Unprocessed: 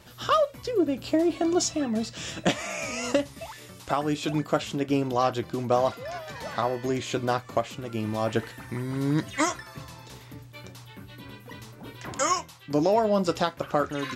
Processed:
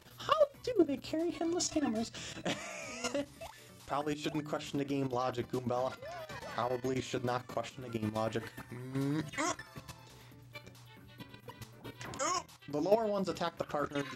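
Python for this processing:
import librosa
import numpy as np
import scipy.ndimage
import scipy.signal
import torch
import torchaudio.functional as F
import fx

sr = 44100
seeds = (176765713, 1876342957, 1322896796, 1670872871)

y = fx.hum_notches(x, sr, base_hz=50, count=6)
y = fx.tremolo_shape(y, sr, shape='triangle', hz=7.6, depth_pct=60)
y = fx.level_steps(y, sr, step_db=11)
y = fx.comb(y, sr, ms=2.9, depth=0.72, at=(1.68, 2.08))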